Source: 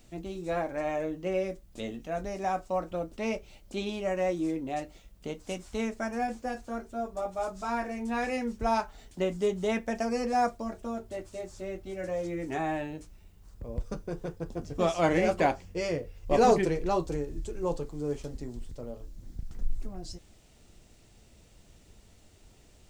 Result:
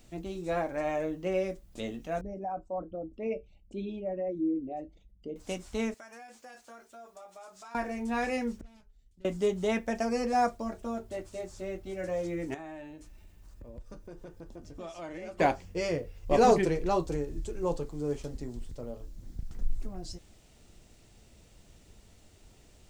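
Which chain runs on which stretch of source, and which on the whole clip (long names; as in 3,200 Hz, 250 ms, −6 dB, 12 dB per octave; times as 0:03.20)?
0:02.21–0:05.36: spectral envelope exaggerated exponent 2 + dynamic equaliser 250 Hz, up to +4 dB, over −45 dBFS, Q 2.2 + tuned comb filter 64 Hz, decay 0.17 s, harmonics odd
0:05.94–0:07.75: high-pass filter 1,500 Hz 6 dB per octave + downward compressor, threshold −45 dBFS
0:08.61–0:09.25: mains-hum notches 60/120/180/240/300/360/420/480/540 Hz + tube saturation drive 31 dB, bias 0.65 + guitar amp tone stack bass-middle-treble 10-0-1
0:12.54–0:15.40: comb filter 3.3 ms, depth 31% + downward compressor 2.5 to 1, threshold −47 dBFS + delay with a high-pass on its return 262 ms, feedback 67%, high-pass 1,700 Hz, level −20.5 dB
whole clip: no processing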